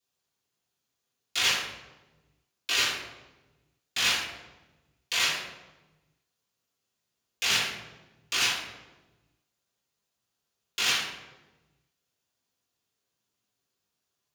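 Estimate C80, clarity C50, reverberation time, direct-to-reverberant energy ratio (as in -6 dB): 5.5 dB, 2.5 dB, 1.2 s, -11.0 dB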